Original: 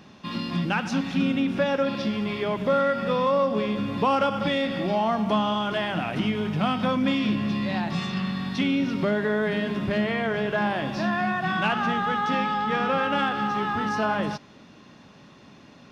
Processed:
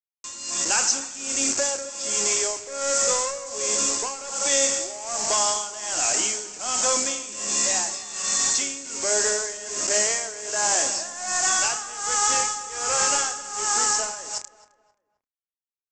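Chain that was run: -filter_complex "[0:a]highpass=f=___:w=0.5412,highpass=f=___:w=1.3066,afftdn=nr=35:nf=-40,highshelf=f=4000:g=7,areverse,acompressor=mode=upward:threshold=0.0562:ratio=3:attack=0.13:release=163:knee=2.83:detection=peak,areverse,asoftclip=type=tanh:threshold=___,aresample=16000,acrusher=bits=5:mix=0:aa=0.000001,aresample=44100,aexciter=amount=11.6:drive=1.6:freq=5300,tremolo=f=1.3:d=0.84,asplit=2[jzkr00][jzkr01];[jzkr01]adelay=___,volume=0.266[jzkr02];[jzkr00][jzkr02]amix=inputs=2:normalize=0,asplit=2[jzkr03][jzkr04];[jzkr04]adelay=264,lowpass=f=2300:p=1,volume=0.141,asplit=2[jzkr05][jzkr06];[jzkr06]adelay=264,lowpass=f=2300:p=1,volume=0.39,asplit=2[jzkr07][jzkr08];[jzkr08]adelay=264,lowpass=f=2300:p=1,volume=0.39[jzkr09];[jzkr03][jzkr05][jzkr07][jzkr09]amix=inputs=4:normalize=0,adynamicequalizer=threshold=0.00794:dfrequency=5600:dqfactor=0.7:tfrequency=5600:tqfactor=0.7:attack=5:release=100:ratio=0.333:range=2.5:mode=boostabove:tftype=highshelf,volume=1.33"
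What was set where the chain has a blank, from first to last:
380, 380, 0.0708, 29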